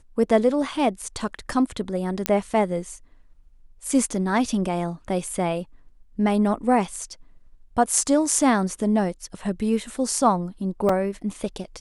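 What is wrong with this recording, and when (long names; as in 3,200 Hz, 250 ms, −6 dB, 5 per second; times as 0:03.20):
0:02.26: click −4 dBFS
0:10.89: drop-out 3.5 ms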